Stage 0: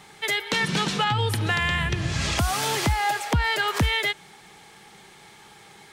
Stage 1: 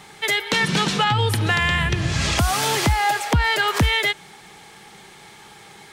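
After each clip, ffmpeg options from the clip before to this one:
-af "acontrast=77,volume=-2.5dB"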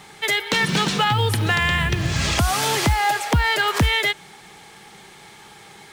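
-af "acrusher=bits=7:mode=log:mix=0:aa=0.000001"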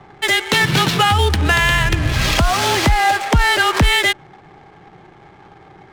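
-af "afreqshift=-26,adynamicsmooth=sensitivity=6:basefreq=700,volume=5dB"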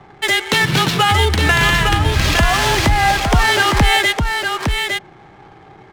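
-af "aecho=1:1:859:0.562"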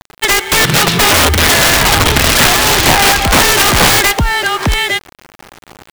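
-af "acrusher=bits=5:mix=0:aa=0.000001,aeval=exprs='(mod(2.82*val(0)+1,2)-1)/2.82':c=same,volume=5.5dB"

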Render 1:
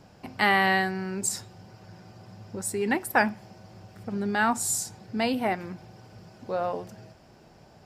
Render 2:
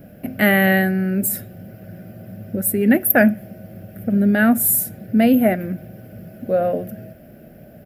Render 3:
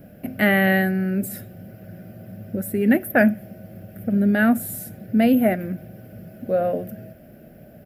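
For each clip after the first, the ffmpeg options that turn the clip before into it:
-af "firequalizer=gain_entry='entry(110,0);entry(230,7);entry(400,-3);entry(610,6);entry(920,-23);entry(1500,-2);entry(3100,-8);entry(4600,-18);entry(7200,-15);entry(12000,15)':delay=0.05:min_phase=1,volume=9dB"
-filter_complex "[0:a]acrossover=split=4800[a][b];[b]acompressor=threshold=-29dB:ratio=4:attack=1:release=60[c];[a][c]amix=inputs=2:normalize=0,volume=-2.5dB"

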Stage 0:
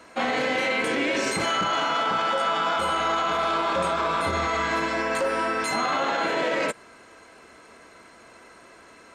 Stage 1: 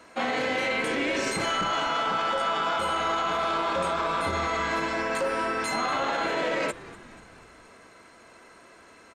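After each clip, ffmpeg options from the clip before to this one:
-filter_complex "[0:a]asplit=6[a][b][c][d][e][f];[b]adelay=242,afreqshift=-150,volume=-18.5dB[g];[c]adelay=484,afreqshift=-300,volume=-23.2dB[h];[d]adelay=726,afreqshift=-450,volume=-28dB[i];[e]adelay=968,afreqshift=-600,volume=-32.7dB[j];[f]adelay=1210,afreqshift=-750,volume=-37.4dB[k];[a][g][h][i][j][k]amix=inputs=6:normalize=0,volume=-2.5dB"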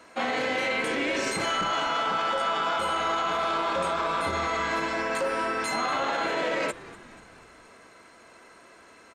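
-af "lowshelf=f=190:g=-3.5"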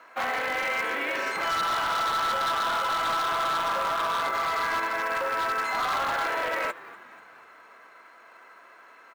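-af "bandpass=f=1.3k:t=q:w=1.1:csg=0,aeval=exprs='0.0531*(abs(mod(val(0)/0.0531+3,4)-2)-1)':c=same,acrusher=bits=6:mode=log:mix=0:aa=0.000001,volume=4dB"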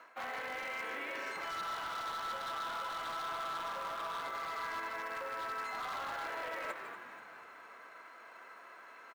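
-af "areverse,acompressor=threshold=-37dB:ratio=5,areverse,aecho=1:1:153:0.316,volume=-2.5dB"

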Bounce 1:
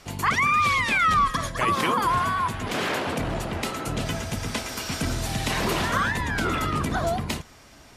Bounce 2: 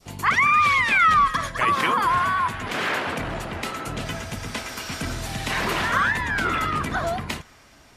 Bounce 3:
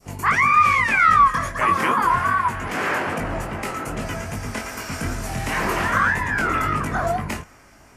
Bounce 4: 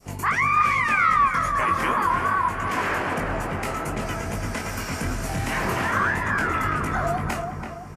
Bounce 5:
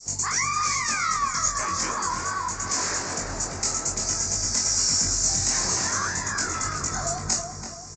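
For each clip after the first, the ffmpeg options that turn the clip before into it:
-af "adynamicequalizer=threshold=0.0158:dfrequency=1700:dqfactor=0.71:tfrequency=1700:tqfactor=0.71:attack=5:release=100:ratio=0.375:range=4:mode=boostabove:tftype=bell,volume=-3dB"
-af "equalizer=f=3.7k:t=o:w=0.69:g=-12.5,acontrast=53,flanger=delay=19:depth=4.1:speed=2.5"
-filter_complex "[0:a]asplit=2[a][b];[b]acompressor=threshold=-26dB:ratio=6,volume=2dB[c];[a][c]amix=inputs=2:normalize=0,asplit=2[d][e];[e]adelay=333,lowpass=f=1.6k:p=1,volume=-4.5dB,asplit=2[f][g];[g]adelay=333,lowpass=f=1.6k:p=1,volume=0.48,asplit=2[h][i];[i]adelay=333,lowpass=f=1.6k:p=1,volume=0.48,asplit=2[j][k];[k]adelay=333,lowpass=f=1.6k:p=1,volume=0.48,asplit=2[l][m];[m]adelay=333,lowpass=f=1.6k:p=1,volume=0.48,asplit=2[n][o];[o]adelay=333,lowpass=f=1.6k:p=1,volume=0.48[p];[d][f][h][j][l][n][p]amix=inputs=7:normalize=0,volume=-7dB"
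-filter_complex "[0:a]asplit=2[a][b];[b]adelay=22,volume=-5dB[c];[a][c]amix=inputs=2:normalize=0,aexciter=amount=13.9:drive=9.4:freq=4.8k,aresample=16000,aresample=44100,volume=-8dB"

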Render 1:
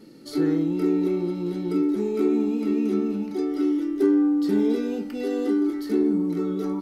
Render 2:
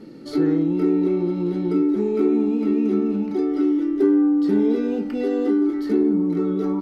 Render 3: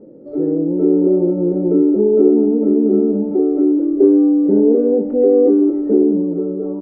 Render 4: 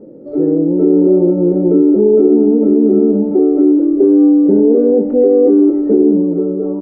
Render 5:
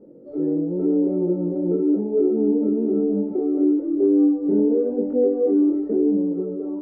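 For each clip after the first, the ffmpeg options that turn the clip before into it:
-filter_complex "[0:a]lowpass=f=2.1k:p=1,asplit=2[a][b];[b]acompressor=threshold=-29dB:ratio=6,volume=2dB[c];[a][c]amix=inputs=2:normalize=0"
-af "dynaudnorm=f=110:g=13:m=8dB,lowpass=f=550:t=q:w=4.9,volume=-4dB"
-af "alimiter=limit=-7dB:level=0:latency=1:release=23,volume=4.5dB"
-af "flanger=delay=20:depth=3.9:speed=0.97,volume=-7.5dB"

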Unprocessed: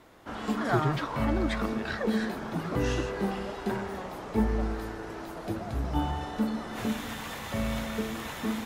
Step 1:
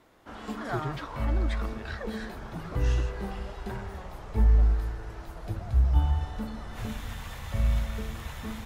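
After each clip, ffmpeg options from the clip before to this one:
-af "asubboost=boost=11.5:cutoff=78,volume=-5dB"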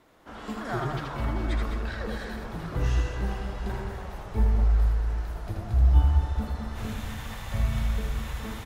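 -af "aecho=1:1:80|208|412.8|740.5|1265:0.631|0.398|0.251|0.158|0.1"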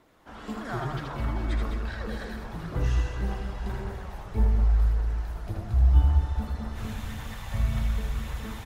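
-af "aphaser=in_gain=1:out_gain=1:delay=1.3:decay=0.22:speed=1.8:type=triangular,volume=-2dB"

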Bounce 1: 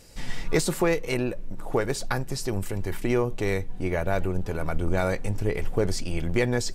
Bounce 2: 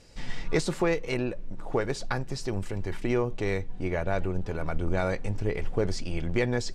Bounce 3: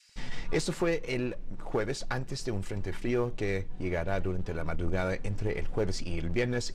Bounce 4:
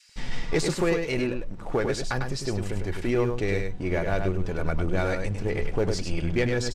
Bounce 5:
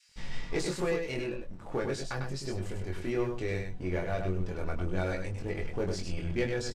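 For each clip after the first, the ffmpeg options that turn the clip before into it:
-af "lowpass=6.2k,volume=-2.5dB"
-filter_complex "[0:a]adynamicequalizer=threshold=0.00501:dfrequency=780:dqfactor=2.2:tfrequency=780:tqfactor=2.2:attack=5:release=100:ratio=0.375:range=2:mode=cutabove:tftype=bell,acrossover=split=1400[a][b];[a]aeval=exprs='sgn(val(0))*max(abs(val(0))-0.00376,0)':c=same[c];[c][b]amix=inputs=2:normalize=0,aeval=exprs='(tanh(8.91*val(0)+0.2)-tanh(0.2))/8.91':c=same"
-af "aecho=1:1:100:0.531,volume=4dB"
-filter_complex "[0:a]asplit=2[a][b];[b]adelay=22,volume=-3dB[c];[a][c]amix=inputs=2:normalize=0,volume=-8.5dB"

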